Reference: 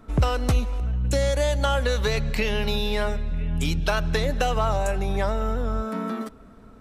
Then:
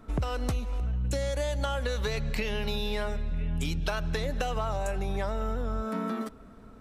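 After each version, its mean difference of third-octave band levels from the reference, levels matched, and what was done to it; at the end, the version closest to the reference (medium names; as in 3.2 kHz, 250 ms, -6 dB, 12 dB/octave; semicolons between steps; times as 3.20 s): 1.5 dB: compression, threshold -24 dBFS, peak gain reduction 8.5 dB; trim -2 dB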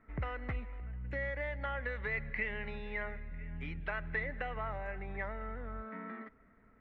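7.5 dB: four-pole ladder low-pass 2.1 kHz, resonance 80%; trim -5 dB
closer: first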